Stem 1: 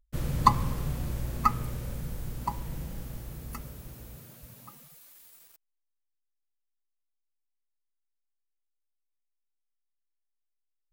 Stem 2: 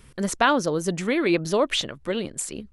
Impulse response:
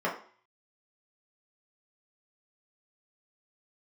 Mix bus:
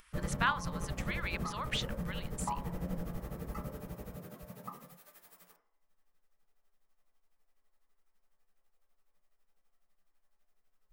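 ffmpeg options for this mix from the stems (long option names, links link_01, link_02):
-filter_complex "[0:a]acompressor=threshold=-34dB:ratio=6,tremolo=f=12:d=0.86,volume=3dB,asplit=2[link_01][link_02];[link_02]volume=-7.5dB[link_03];[1:a]highpass=frequency=1100:width=0.5412,highpass=frequency=1100:width=1.3066,volume=-5.5dB[link_04];[2:a]atrim=start_sample=2205[link_05];[link_03][link_05]afir=irnorm=-1:irlink=0[link_06];[link_01][link_04][link_06]amix=inputs=3:normalize=0,highshelf=frequency=2300:gain=-8,acompressor=mode=upward:threshold=-56dB:ratio=2.5"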